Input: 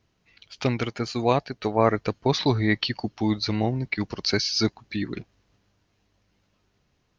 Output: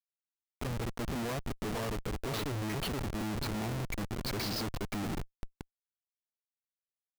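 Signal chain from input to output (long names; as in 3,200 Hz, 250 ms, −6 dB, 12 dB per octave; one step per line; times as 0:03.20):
high-frequency loss of the air 130 metres
repeating echo 474 ms, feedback 25%, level −11 dB
comparator with hysteresis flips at −31.5 dBFS
level −6.5 dB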